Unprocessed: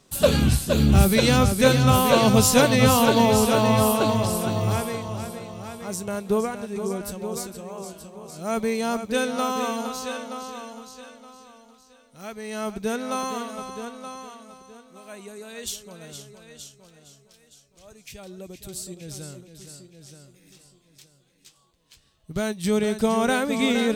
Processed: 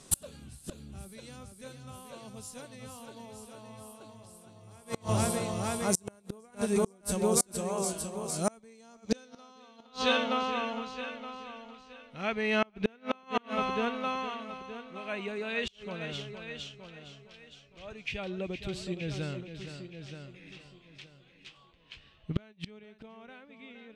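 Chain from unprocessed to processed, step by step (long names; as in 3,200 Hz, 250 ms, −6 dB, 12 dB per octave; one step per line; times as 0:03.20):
gate with flip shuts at −18 dBFS, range −33 dB
low-pass filter sweep 9,800 Hz → 2,700 Hz, 0:08.35–0:10.45
level +3.5 dB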